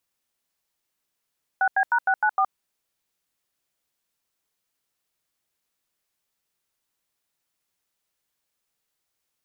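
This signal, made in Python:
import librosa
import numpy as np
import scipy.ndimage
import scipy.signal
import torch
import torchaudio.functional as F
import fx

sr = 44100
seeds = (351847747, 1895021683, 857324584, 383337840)

y = fx.dtmf(sr, digits='6B#694', tone_ms=68, gap_ms=86, level_db=-20.0)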